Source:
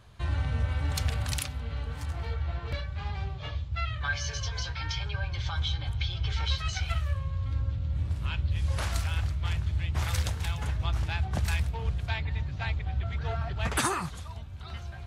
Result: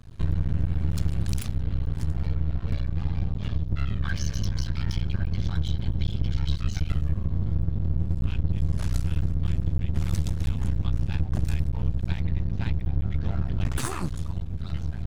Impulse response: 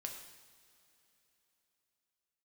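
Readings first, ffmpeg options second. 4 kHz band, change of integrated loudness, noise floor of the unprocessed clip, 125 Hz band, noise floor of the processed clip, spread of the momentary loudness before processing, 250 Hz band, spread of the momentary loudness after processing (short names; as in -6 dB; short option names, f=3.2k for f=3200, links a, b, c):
-6.0 dB, +3.0 dB, -40 dBFS, +4.0 dB, -32 dBFS, 6 LU, +9.5 dB, 2 LU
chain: -af "bass=f=250:g=15,treble=f=4k:g=4,aeval=exprs='max(val(0),0)':c=same,acompressor=threshold=-21dB:ratio=3"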